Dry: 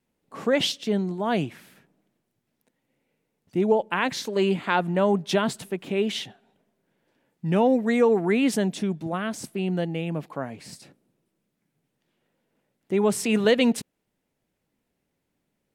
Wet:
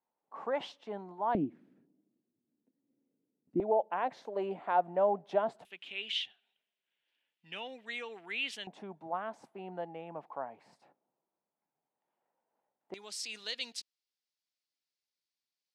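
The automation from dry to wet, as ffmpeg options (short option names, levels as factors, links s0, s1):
-af "asetnsamples=n=441:p=0,asendcmd='1.35 bandpass f 280;3.6 bandpass f 710;5.65 bandpass f 3000;8.67 bandpass f 850;12.94 bandpass f 4700',bandpass=f=890:t=q:w=3.2:csg=0"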